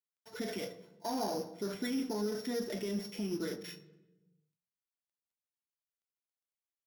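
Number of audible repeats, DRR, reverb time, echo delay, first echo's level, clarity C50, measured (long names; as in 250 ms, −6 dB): no echo audible, 12.0 dB, 1.1 s, no echo audible, no echo audible, 15.5 dB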